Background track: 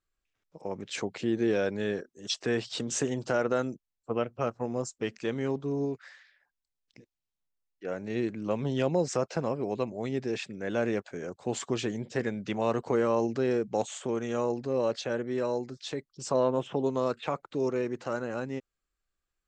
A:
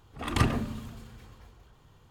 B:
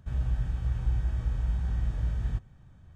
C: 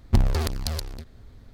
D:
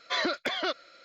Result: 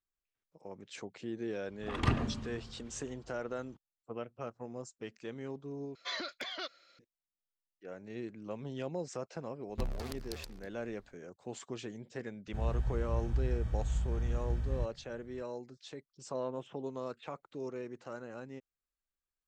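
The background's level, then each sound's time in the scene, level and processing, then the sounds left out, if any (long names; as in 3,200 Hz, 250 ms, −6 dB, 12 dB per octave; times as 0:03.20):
background track −11.5 dB
0:01.67: mix in A −4.5 dB + high-frequency loss of the air 96 metres
0:05.95: overwrite with D −13.5 dB + high-shelf EQ 2,100 Hz +7.5 dB
0:09.65: mix in C −14.5 dB, fades 0.10 s + parametric band 89 Hz −6.5 dB 1.4 octaves
0:12.47: mix in B −4.5 dB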